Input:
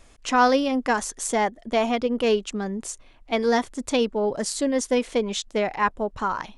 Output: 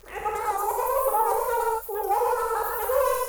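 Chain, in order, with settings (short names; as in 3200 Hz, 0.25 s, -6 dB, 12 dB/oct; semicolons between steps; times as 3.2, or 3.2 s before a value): whole clip reversed; wavefolder -18.5 dBFS; speed mistake 7.5 ips tape played at 15 ips; graphic EQ 250/500/1000/2000/8000 Hz -6/+8/+5/-10/+6 dB; thin delay 0.105 s, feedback 61%, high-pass 5400 Hz, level -3.5 dB; non-linear reverb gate 0.2 s flat, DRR -3.5 dB; requantised 8-bit, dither none; band shelf 5000 Hz -14.5 dB; crackle 65/s -29 dBFS; record warp 78 rpm, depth 100 cents; gain -7.5 dB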